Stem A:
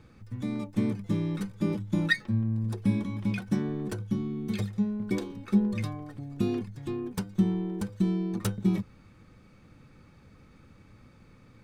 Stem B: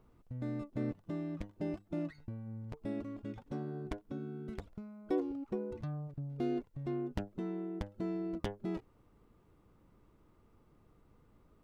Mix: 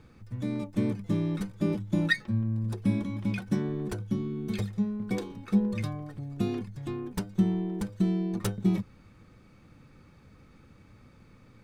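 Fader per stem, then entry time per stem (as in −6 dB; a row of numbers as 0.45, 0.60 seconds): −0.5, −3.5 decibels; 0.00, 0.00 seconds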